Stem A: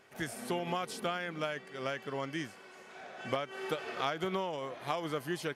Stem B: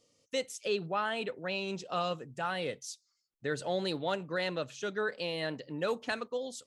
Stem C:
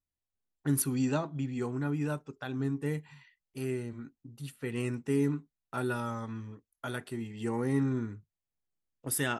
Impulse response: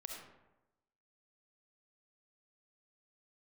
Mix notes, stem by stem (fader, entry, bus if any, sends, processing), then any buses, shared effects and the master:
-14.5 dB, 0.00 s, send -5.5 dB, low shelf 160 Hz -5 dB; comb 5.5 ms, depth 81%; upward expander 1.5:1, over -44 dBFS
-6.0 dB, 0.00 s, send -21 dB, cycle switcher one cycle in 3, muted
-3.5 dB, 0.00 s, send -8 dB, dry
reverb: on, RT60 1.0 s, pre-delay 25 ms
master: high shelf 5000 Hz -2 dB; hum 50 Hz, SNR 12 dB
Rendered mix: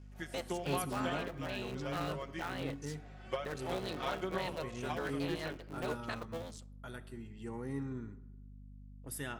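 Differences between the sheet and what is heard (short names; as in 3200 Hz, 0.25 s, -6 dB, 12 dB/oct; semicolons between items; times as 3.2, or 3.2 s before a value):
stem A -14.5 dB -> -8.0 dB; stem C -3.5 dB -> -12.0 dB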